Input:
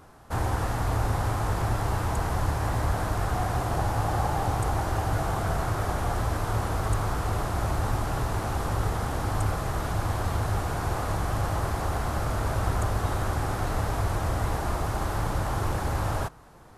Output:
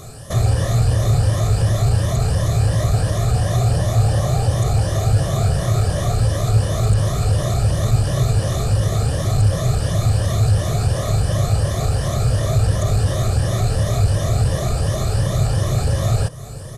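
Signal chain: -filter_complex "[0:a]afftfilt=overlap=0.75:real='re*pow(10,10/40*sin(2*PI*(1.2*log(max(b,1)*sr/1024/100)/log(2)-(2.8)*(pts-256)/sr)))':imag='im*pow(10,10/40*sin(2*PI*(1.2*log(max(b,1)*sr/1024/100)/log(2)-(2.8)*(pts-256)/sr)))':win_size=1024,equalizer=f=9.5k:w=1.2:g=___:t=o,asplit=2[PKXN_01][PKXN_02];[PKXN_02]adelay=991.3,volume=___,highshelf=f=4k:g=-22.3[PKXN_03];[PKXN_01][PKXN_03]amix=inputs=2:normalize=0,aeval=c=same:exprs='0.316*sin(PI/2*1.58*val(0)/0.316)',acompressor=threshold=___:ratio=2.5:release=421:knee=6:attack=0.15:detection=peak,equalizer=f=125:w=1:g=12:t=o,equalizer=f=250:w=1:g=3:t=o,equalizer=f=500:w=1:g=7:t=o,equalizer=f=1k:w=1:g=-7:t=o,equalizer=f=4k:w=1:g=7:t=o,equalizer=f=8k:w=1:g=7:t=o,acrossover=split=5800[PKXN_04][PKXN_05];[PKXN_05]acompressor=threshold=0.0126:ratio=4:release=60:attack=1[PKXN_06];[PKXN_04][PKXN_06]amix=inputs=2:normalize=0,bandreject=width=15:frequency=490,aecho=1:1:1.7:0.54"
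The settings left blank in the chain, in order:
8, 0.0631, 0.0708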